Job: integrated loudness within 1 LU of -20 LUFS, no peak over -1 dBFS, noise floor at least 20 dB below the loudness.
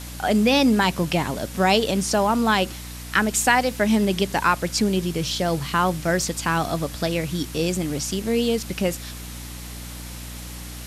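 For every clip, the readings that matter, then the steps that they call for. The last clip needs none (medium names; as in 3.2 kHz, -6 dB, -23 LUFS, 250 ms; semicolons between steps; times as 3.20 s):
hum 60 Hz; highest harmonic 300 Hz; hum level -35 dBFS; noise floor -36 dBFS; noise floor target -42 dBFS; loudness -22.0 LUFS; peak level -4.5 dBFS; loudness target -20.0 LUFS
-> hum notches 60/120/180/240/300 Hz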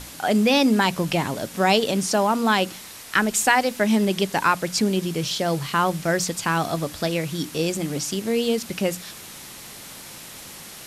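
hum not found; noise floor -40 dBFS; noise floor target -42 dBFS
-> noise print and reduce 6 dB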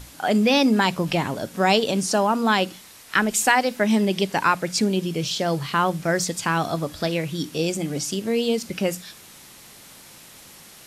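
noise floor -46 dBFS; loudness -22.0 LUFS; peak level -4.0 dBFS; loudness target -20.0 LUFS
-> trim +2 dB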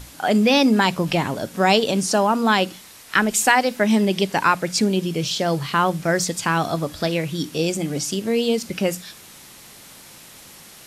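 loudness -20.0 LUFS; peak level -2.0 dBFS; noise floor -44 dBFS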